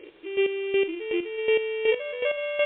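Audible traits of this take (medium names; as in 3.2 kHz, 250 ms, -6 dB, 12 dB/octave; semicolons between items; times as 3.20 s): a buzz of ramps at a fixed pitch in blocks of 16 samples; chopped level 2.7 Hz, depth 65%, duty 25%; a quantiser's noise floor 10-bit, dither triangular; MP3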